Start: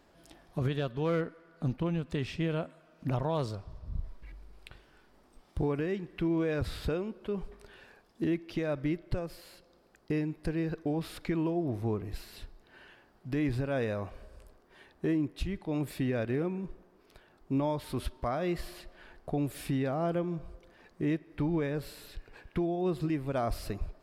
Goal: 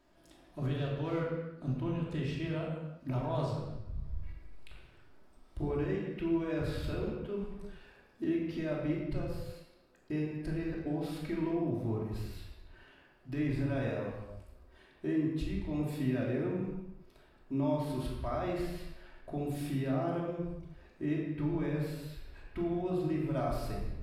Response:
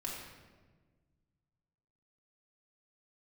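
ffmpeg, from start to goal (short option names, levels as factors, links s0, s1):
-filter_complex "[1:a]atrim=start_sample=2205,afade=t=out:st=0.43:d=0.01,atrim=end_sample=19404[s0];[0:a][s0]afir=irnorm=-1:irlink=0,volume=0.631"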